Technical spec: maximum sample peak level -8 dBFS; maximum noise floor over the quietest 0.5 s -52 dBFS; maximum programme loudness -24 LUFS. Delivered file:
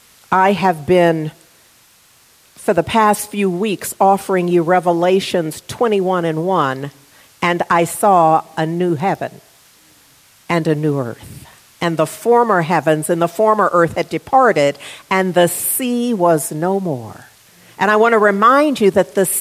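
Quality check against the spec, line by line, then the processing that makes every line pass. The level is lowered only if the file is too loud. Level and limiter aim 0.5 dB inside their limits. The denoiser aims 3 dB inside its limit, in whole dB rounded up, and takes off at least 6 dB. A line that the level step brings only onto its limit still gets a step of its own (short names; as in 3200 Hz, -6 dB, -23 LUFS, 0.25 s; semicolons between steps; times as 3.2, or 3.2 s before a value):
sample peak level -1.5 dBFS: fail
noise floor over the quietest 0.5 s -50 dBFS: fail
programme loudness -15.5 LUFS: fail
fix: gain -9 dB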